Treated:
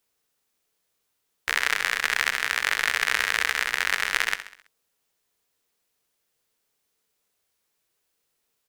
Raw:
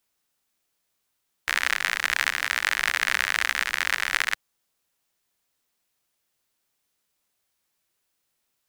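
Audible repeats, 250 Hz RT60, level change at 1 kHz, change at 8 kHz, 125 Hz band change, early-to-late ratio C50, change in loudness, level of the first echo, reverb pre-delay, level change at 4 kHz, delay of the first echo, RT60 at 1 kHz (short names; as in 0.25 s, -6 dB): 4, none, +0.5 dB, +0.5 dB, n/a, none, +0.5 dB, -12.0 dB, none, +0.5 dB, 66 ms, none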